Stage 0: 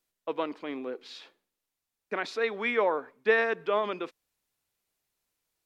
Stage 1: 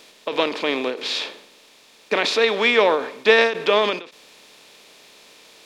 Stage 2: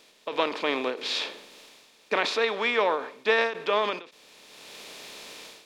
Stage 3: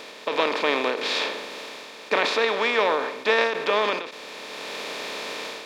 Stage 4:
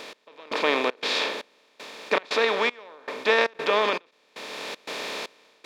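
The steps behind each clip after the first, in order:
compressor on every frequency bin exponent 0.6; high shelf with overshoot 2,400 Hz +7.5 dB, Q 1.5; every ending faded ahead of time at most 130 dB per second; level +7.5 dB
dynamic equaliser 1,100 Hz, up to +6 dB, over −31 dBFS, Q 0.86; automatic gain control gain up to 14 dB; level −8.5 dB
compressor on every frequency bin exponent 0.6
gate pattern "x...xxx.xx" 117 BPM −24 dB

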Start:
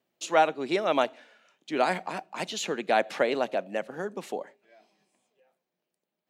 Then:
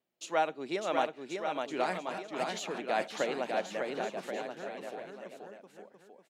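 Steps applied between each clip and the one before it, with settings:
bouncing-ball delay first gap 600 ms, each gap 0.8×, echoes 5
level −7.5 dB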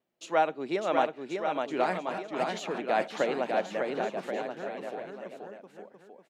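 high-shelf EQ 3,400 Hz −9 dB
level +4.5 dB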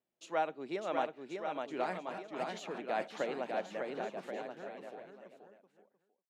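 fade-out on the ending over 1.76 s
level −8 dB

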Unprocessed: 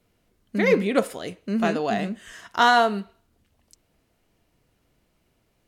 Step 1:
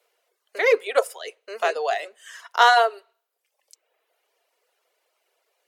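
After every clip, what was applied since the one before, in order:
Butterworth high-pass 430 Hz 48 dB per octave
reverb reduction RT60 0.89 s
level +3 dB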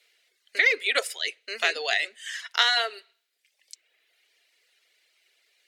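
octave-band graphic EQ 250/500/1,000/2,000/4,000/8,000 Hz +9/−6/−10/+12/+11/+5 dB
downward compressor 6 to 1, threshold −15 dBFS, peak gain reduction 9 dB
level −2.5 dB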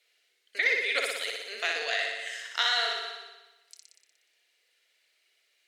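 delay that plays each chunk backwards 163 ms, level −11.5 dB
flutter between parallel walls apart 10.3 metres, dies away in 1.1 s
level −6.5 dB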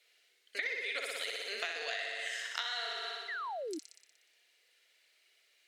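downward compressor 8 to 1, threshold −35 dBFS, peak gain reduction 14 dB
sound drawn into the spectrogram fall, 0:03.28–0:03.79, 290–2,100 Hz −40 dBFS
level +1 dB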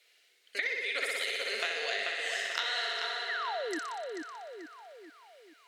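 feedback echo with a low-pass in the loop 437 ms, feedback 51%, low-pass 3,900 Hz, level −3.5 dB
level +3.5 dB

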